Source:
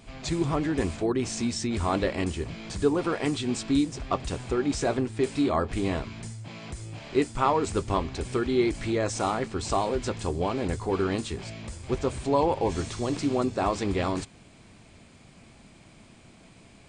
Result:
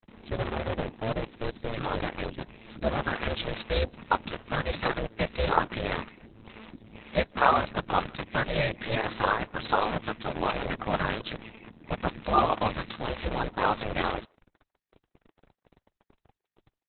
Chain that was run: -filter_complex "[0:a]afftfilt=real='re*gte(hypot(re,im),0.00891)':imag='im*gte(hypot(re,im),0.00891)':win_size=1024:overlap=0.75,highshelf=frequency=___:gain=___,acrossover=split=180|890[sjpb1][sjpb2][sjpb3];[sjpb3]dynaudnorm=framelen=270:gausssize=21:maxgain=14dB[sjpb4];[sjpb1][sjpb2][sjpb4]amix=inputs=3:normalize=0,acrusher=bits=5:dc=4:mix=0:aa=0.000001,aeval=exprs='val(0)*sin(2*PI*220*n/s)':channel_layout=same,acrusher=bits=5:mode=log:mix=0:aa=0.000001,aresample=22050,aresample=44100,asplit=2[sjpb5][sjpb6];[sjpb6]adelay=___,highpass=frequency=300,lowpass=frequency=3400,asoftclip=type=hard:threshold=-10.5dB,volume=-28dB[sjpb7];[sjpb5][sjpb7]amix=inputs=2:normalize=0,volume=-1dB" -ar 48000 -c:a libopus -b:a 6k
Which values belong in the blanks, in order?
3800, -8, 150